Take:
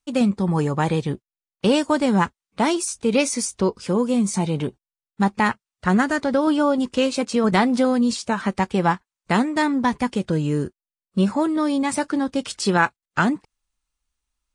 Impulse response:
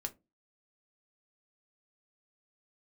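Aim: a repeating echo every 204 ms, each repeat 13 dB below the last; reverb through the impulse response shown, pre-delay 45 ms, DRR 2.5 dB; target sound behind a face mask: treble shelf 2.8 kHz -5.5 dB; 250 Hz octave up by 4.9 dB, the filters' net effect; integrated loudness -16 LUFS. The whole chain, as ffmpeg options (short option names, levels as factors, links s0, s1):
-filter_complex "[0:a]equalizer=f=250:t=o:g=6,aecho=1:1:204|408|612:0.224|0.0493|0.0108,asplit=2[s0][s1];[1:a]atrim=start_sample=2205,adelay=45[s2];[s1][s2]afir=irnorm=-1:irlink=0,volume=0.841[s3];[s0][s3]amix=inputs=2:normalize=0,highshelf=f=2800:g=-5.5"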